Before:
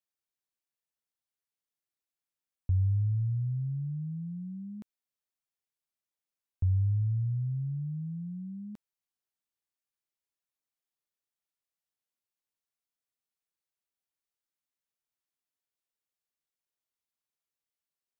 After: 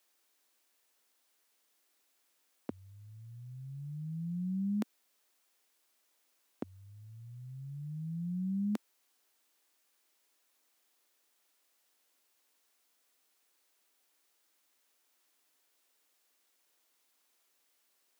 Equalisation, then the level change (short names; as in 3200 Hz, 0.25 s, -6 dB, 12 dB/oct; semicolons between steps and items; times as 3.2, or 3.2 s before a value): steep high-pass 240 Hz 36 dB/oct; +18.0 dB